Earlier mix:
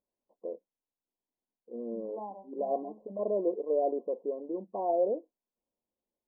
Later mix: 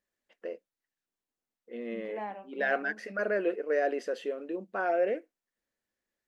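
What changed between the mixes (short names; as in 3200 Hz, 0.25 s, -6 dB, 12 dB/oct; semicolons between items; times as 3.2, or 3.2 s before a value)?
second voice +3.0 dB; master: remove brick-wall FIR low-pass 1100 Hz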